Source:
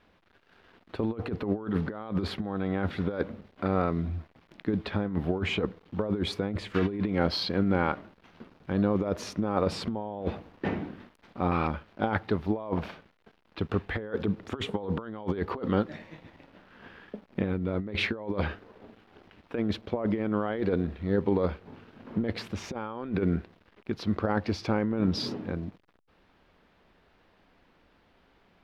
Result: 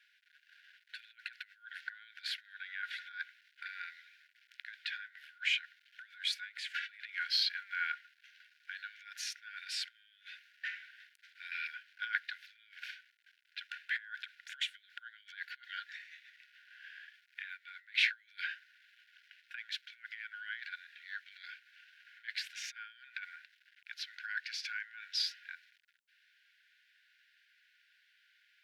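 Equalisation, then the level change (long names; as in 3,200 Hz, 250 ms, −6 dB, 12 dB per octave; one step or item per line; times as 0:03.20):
linear-phase brick-wall high-pass 1,400 Hz
+1.0 dB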